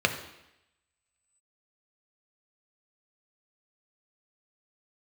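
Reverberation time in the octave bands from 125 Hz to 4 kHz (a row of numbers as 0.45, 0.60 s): 0.75, 0.85, 0.85, 0.85, 0.95, 0.90 s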